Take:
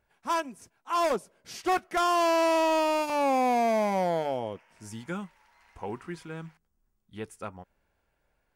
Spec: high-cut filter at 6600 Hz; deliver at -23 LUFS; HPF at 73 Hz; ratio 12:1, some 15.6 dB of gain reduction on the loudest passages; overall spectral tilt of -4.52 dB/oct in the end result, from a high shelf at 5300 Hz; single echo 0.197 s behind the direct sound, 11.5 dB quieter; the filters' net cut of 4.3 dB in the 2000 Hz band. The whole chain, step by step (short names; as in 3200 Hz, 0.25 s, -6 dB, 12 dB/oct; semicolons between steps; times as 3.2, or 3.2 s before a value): HPF 73 Hz; LPF 6600 Hz; bell 2000 Hz -5 dB; high shelf 5300 Hz -4 dB; compressor 12:1, threshold -39 dBFS; echo 0.197 s -11.5 dB; gain +20.5 dB